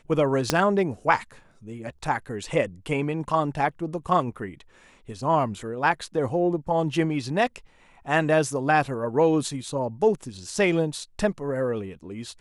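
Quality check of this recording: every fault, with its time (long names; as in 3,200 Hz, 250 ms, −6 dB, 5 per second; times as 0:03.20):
0:00.50: click −5 dBFS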